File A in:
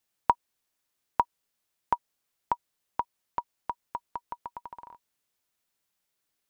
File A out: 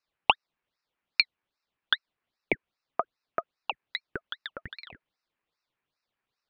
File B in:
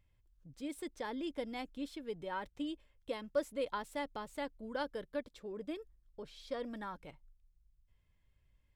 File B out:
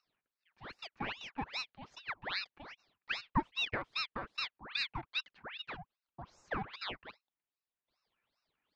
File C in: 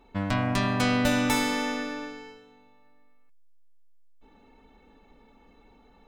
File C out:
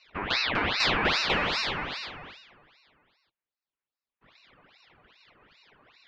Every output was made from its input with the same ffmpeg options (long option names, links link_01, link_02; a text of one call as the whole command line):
ffmpeg -i in.wav -af "highpass=frequency=430:width=0.5412,highpass=frequency=430:width=1.3066,equalizer=frequency=450:width_type=q:width=4:gain=4,equalizer=frequency=700:width_type=q:width=4:gain=9,equalizer=frequency=1300:width_type=q:width=4:gain=5,equalizer=frequency=2000:width_type=q:width=4:gain=8,equalizer=frequency=3200:width_type=q:width=4:gain=-9,lowpass=frequency=3300:width=0.5412,lowpass=frequency=3300:width=1.3066,aeval=exprs='val(0)*sin(2*PI*1800*n/s+1800*0.85/2.5*sin(2*PI*2.5*n/s))':channel_layout=same,volume=1.5dB" out.wav